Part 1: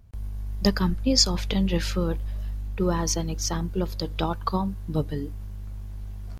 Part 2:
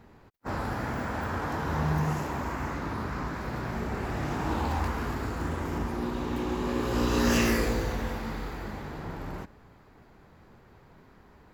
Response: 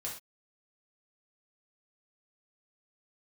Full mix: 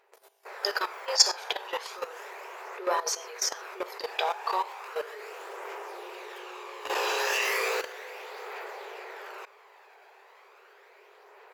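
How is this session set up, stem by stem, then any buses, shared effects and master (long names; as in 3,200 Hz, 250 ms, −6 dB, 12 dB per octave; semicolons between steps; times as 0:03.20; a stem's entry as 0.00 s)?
−0.5 dB, 0.00 s, send −3 dB, high-pass filter 350 Hz 12 dB per octave
−2.0 dB, 0.00 s, no send, parametric band 2,500 Hz +7 dB 0.58 octaves; automatic gain control gain up to 9 dB; automatic ducking −7 dB, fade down 1.35 s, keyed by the first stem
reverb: on, pre-delay 3 ms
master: linear-phase brick-wall high-pass 370 Hz; output level in coarse steps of 14 dB; phase shifter 0.35 Hz, delay 1.3 ms, feedback 32%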